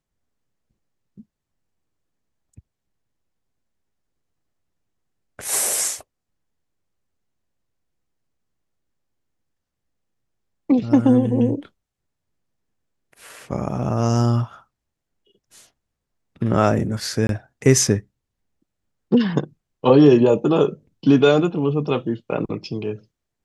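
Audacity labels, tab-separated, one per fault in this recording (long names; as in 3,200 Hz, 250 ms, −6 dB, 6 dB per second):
17.270000	17.290000	drop-out 22 ms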